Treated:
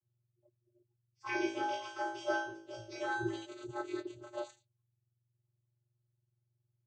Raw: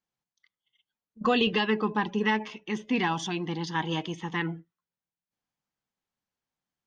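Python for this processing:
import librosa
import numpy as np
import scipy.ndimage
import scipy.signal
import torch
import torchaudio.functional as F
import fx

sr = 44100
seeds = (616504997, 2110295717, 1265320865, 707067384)

y = fx.octave_mirror(x, sr, pivot_hz=1100.0)
y = fx.high_shelf(y, sr, hz=3700.0, db=-9.5)
y = fx.vocoder(y, sr, bands=16, carrier='square', carrier_hz=119.0)
y = fx.room_flutter(y, sr, wall_m=3.1, rt60_s=0.54, at=(1.26, 3.45), fade=0.02)
y = y * 10.0 ** (-6.5 / 20.0)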